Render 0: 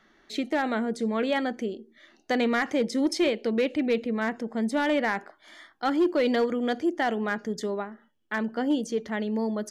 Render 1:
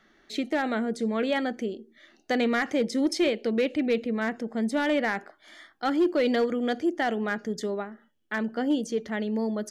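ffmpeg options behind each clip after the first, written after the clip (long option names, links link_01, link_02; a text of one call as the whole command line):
ffmpeg -i in.wav -af "equalizer=frequency=980:width=4.2:gain=-5" out.wav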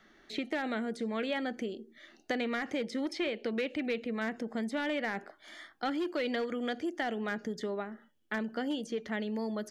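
ffmpeg -i in.wav -filter_complex "[0:a]acrossover=split=800|1800|3600[link_01][link_02][link_03][link_04];[link_01]acompressor=threshold=-34dB:ratio=4[link_05];[link_02]acompressor=threshold=-43dB:ratio=4[link_06];[link_03]acompressor=threshold=-39dB:ratio=4[link_07];[link_04]acompressor=threshold=-55dB:ratio=4[link_08];[link_05][link_06][link_07][link_08]amix=inputs=4:normalize=0" out.wav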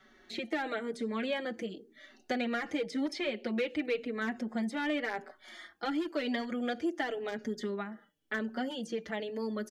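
ffmpeg -i in.wav -filter_complex "[0:a]asplit=2[link_01][link_02];[link_02]adelay=4.8,afreqshift=-0.95[link_03];[link_01][link_03]amix=inputs=2:normalize=1,volume=3dB" out.wav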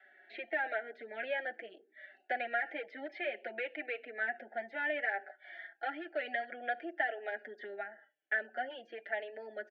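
ffmpeg -i in.wav -af "asuperstop=centerf=1100:order=8:qfactor=2.2,highpass=frequency=450:width=0.5412,highpass=frequency=450:width=1.3066,equalizer=frequency=470:width_type=q:width=4:gain=-9,equalizer=frequency=690:width_type=q:width=4:gain=6,equalizer=frequency=1000:width_type=q:width=4:gain=-9,equalizer=frequency=1700:width_type=q:width=4:gain=6,lowpass=frequency=2500:width=0.5412,lowpass=frequency=2500:width=1.3066" out.wav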